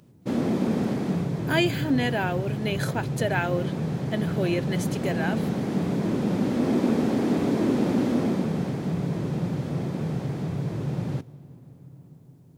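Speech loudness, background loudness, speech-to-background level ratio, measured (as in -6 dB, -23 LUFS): -28.5 LUFS, -27.0 LUFS, -1.5 dB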